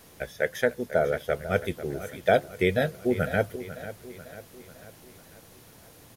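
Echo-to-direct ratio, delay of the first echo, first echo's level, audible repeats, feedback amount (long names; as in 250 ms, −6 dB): −12.5 dB, 495 ms, −14.0 dB, 4, 52%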